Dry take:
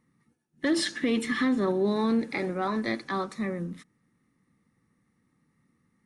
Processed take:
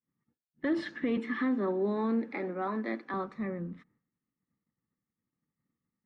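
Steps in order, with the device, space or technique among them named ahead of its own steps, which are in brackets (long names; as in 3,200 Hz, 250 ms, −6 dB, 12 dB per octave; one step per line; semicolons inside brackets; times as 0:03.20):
hearing-loss simulation (low-pass filter 2,000 Hz 12 dB per octave; downward expander −60 dBFS)
0:01.17–0:03.14: Butterworth high-pass 190 Hz
level −4 dB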